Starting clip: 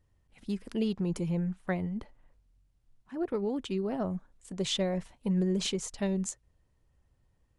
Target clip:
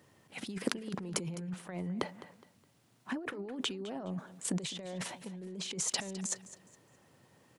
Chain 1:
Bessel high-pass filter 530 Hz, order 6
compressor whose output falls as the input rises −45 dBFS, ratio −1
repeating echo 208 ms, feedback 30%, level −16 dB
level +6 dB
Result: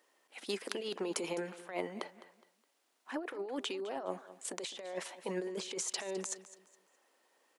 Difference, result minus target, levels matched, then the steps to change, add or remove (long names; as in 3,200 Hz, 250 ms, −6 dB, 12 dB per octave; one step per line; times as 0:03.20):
500 Hz band +6.0 dB
change: Bessel high-pass filter 200 Hz, order 6